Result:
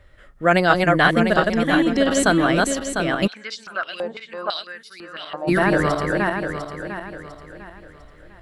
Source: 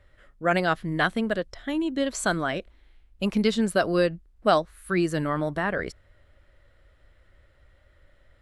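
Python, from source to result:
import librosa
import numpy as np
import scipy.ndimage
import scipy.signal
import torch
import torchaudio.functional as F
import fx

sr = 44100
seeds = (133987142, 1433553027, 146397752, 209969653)

y = fx.reverse_delay_fb(x, sr, ms=350, feedback_pct=58, wet_db=-2)
y = fx.filter_held_bandpass(y, sr, hz=6.0, low_hz=760.0, high_hz=5200.0, at=(3.26, 5.47), fade=0.02)
y = y * 10.0 ** (6.5 / 20.0)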